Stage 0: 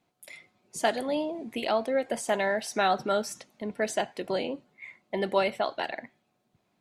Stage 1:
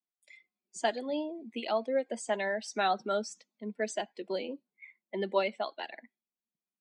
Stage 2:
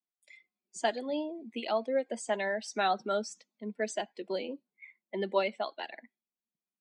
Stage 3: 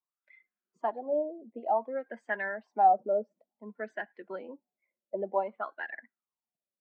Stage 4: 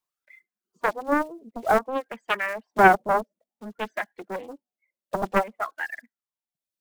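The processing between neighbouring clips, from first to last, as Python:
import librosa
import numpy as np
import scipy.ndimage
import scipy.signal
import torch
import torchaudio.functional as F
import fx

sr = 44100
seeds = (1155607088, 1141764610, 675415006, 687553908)

y1 = fx.bin_expand(x, sr, power=1.5)
y1 = scipy.signal.sosfilt(scipy.signal.cheby1(4, 1.0, [200.0, 8200.0], 'bandpass', fs=sr, output='sos'), y1)
y1 = y1 * 10.0 ** (-1.5 / 20.0)
y2 = y1
y3 = fx.filter_lfo_lowpass(y2, sr, shape='sine', hz=0.55, low_hz=540.0, high_hz=1700.0, q=8.0)
y3 = y3 * 10.0 ** (-7.0 / 20.0)
y4 = fx.block_float(y3, sr, bits=5)
y4 = fx.dereverb_blind(y4, sr, rt60_s=1.0)
y4 = fx.doppler_dist(y4, sr, depth_ms=0.9)
y4 = y4 * 10.0 ** (7.5 / 20.0)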